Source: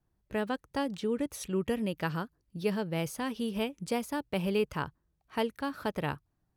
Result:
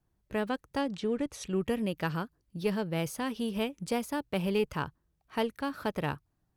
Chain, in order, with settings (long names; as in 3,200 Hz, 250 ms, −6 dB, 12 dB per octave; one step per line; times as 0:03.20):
0:00.81–0:01.47: low-pass filter 7,700 Hz 12 dB per octave
in parallel at −8 dB: asymmetric clip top −34.5 dBFS
on the sum: level −2 dB